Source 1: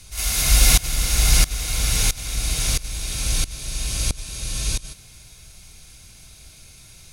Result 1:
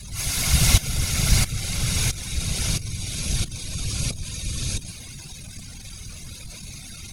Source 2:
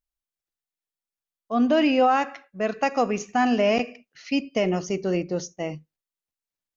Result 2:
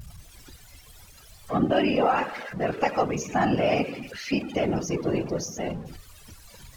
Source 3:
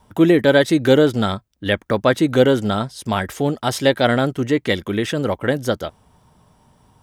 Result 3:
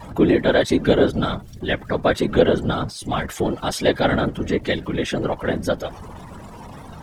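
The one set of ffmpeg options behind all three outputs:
ffmpeg -i in.wav -af "aeval=exprs='val(0)+0.5*0.0447*sgn(val(0))':channel_layout=same,afftfilt=real='hypot(re,im)*cos(2*PI*random(0))':imag='hypot(re,im)*sin(2*PI*random(1))':win_size=512:overlap=0.75,afftdn=noise_reduction=13:noise_floor=-43,aemphasis=mode=reproduction:type=75fm,crystalizer=i=3:c=0,volume=1.5dB" out.wav

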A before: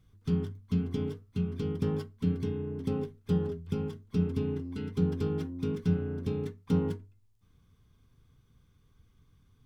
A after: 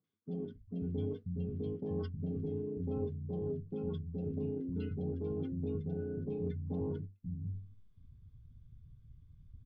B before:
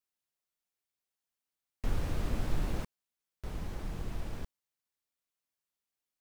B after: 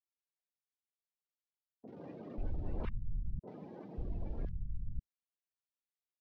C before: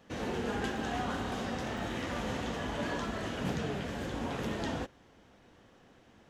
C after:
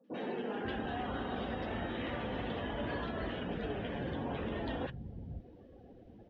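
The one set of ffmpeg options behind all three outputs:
ffmpeg -i in.wav -filter_complex "[0:a]lowpass=frequency=5000:width=0.5412,lowpass=frequency=5000:width=1.3066,asoftclip=type=tanh:threshold=-22dB,areverse,acompressor=threshold=-44dB:ratio=4,areverse,acrossover=split=170|1200[link_01][link_02][link_03];[link_03]adelay=40[link_04];[link_01]adelay=540[link_05];[link_05][link_02][link_04]amix=inputs=3:normalize=0,afftdn=noise_reduction=21:noise_floor=-56,volume=9dB" out.wav

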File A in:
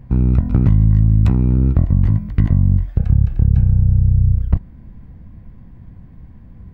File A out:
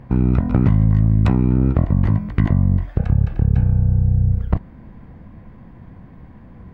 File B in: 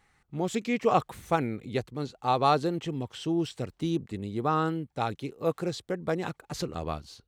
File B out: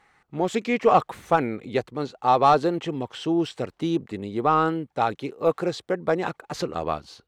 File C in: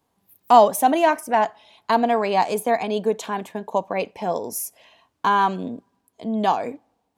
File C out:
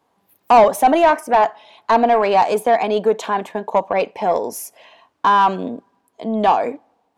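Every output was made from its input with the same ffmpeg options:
ffmpeg -i in.wav -filter_complex "[0:a]asplit=2[link_01][link_02];[link_02]highpass=frequency=720:poles=1,volume=18dB,asoftclip=type=tanh:threshold=-1dB[link_03];[link_01][link_03]amix=inputs=2:normalize=0,lowpass=frequency=1000:poles=1,volume=-6dB,highshelf=frequency=4100:gain=5.5" out.wav

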